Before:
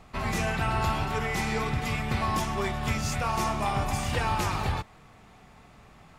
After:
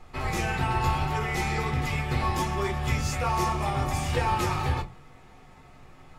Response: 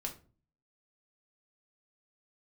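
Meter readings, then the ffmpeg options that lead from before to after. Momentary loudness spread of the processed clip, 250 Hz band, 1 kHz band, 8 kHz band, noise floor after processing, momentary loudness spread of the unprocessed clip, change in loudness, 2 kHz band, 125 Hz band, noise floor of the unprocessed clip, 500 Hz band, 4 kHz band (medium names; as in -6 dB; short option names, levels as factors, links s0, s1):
3 LU, -0.5 dB, +1.5 dB, -0.5 dB, -51 dBFS, 3 LU, +1.0 dB, 0.0 dB, +2.5 dB, -54 dBFS, +0.5 dB, -0.5 dB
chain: -filter_complex "[1:a]atrim=start_sample=2205,asetrate=88200,aresample=44100[s0];[0:a][s0]afir=irnorm=-1:irlink=0,volume=2.11"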